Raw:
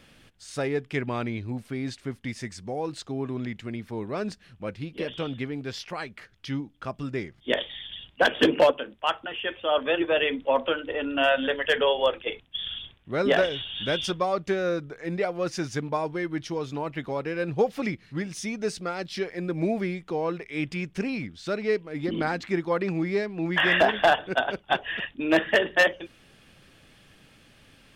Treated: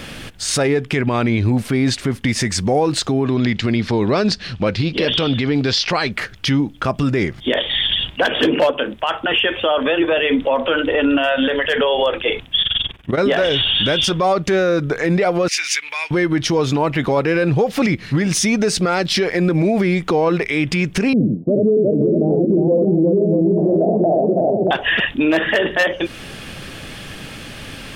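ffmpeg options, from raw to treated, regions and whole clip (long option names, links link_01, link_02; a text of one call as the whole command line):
ffmpeg -i in.wav -filter_complex "[0:a]asettb=1/sr,asplit=3[link_01][link_02][link_03];[link_01]atrim=end=3.264[link_04];[link_02]atrim=start=3.26:end=6.12,asetpts=PTS-STARTPTS,afade=type=in:duration=0.004:curve=qsin,afade=type=out:start_time=2.856:duration=0.004:curve=qsin,lowpass=6700,equalizer=frequency=4500:width=1.6:gain=9[link_05];[link_03]atrim=start=6.116[link_06];[link_04][link_05]acrossfade=duration=0.004:curve1=hsin:curve2=qsin[link_07];[link_07][link_06]acrossfade=duration=0.004:curve1=qsin:curve2=hsin,asettb=1/sr,asplit=3[link_08][link_09][link_10];[link_08]atrim=end=12.624[link_11];[link_09]atrim=start=12.62:end=13.19,asetpts=PTS-STARTPTS,afade=type=in:duration=0.004:curve=qsin,afade=type=out:start_time=0.566:duration=0.004:curve=qsin,bandreject=frequency=4100:width=15,tremolo=f=21:d=0.889[link_12];[link_10]atrim=start=13.186[link_13];[link_11][link_12]acrossfade=duration=0.004:curve1=hsin:curve2=qsin[link_14];[link_14][link_13]acrossfade=duration=0.004:curve1=qsin:curve2=hsin,asettb=1/sr,asplit=3[link_15][link_16][link_17];[link_15]atrim=end=15.484[link_18];[link_16]atrim=start=15.48:end=16.11,asetpts=PTS-STARTPTS,afade=type=in:duration=0.004:curve=qsin,afade=type=out:start_time=0.626:duration=0.004:curve=qsin,acompressor=threshold=-34dB:ratio=6:attack=3.2:release=140:knee=1:detection=peak,highpass=frequency=2300:width_type=q:width=4.3[link_19];[link_17]atrim=start=16.106[link_20];[link_18][link_19]acrossfade=duration=0.004:curve1=hsin:curve2=qsin[link_21];[link_21][link_20]acrossfade=duration=0.004:curve1=qsin:curve2=hsin,asettb=1/sr,asplit=3[link_22][link_23][link_24];[link_22]atrim=end=21.134[link_25];[link_23]atrim=start=21.13:end=24.71,asetpts=PTS-STARTPTS,afade=type=in:duration=0.004:curve=qsin,afade=type=out:start_time=3.576:duration=0.004:curve=qsin,asuperpass=centerf=270:order=12:qfactor=0.53,aecho=1:1:70|357|496|631:0.596|0.668|0.133|0.473,atrim=end_sample=157878[link_26];[link_24]atrim=start=24.706[link_27];[link_25][link_26]acrossfade=duration=0.004:curve1=hsin:curve2=qsin[link_28];[link_28][link_27]acrossfade=duration=0.004:curve1=qsin:curve2=hsin,acompressor=threshold=-34dB:ratio=2,alimiter=level_in=30dB:limit=-1dB:release=50:level=0:latency=1,volume=-7.5dB" out.wav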